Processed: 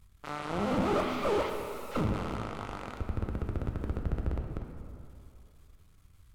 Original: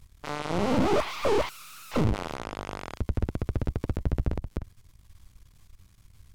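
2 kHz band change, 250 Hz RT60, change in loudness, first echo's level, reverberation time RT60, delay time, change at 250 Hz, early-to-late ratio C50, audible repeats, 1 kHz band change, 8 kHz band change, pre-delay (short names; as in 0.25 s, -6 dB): -4.0 dB, 2.6 s, -4.0 dB, none, 2.7 s, none, -3.5 dB, 4.5 dB, none, -2.5 dB, -7.0 dB, 5 ms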